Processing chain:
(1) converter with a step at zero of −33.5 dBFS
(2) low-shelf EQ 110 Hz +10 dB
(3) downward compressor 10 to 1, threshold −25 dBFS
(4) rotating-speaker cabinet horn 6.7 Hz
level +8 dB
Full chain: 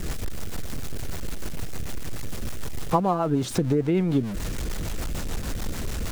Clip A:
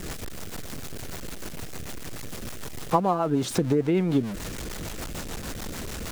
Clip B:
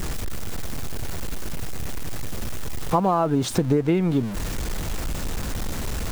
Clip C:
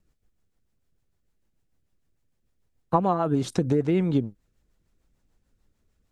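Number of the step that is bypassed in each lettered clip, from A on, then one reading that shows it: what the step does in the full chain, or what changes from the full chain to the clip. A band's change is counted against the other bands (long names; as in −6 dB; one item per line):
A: 2, 125 Hz band −3.5 dB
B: 4, change in integrated loudness +2.0 LU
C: 1, distortion level −15 dB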